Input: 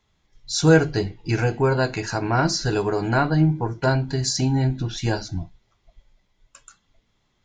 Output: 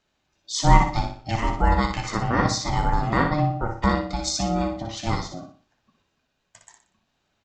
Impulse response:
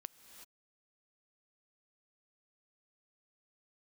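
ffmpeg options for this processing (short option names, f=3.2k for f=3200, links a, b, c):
-af "highpass=260,aeval=exprs='val(0)*sin(2*PI*450*n/s)':c=same,lowshelf=f=450:g=7,aecho=1:1:60|120|180|240:0.473|0.166|0.058|0.0203"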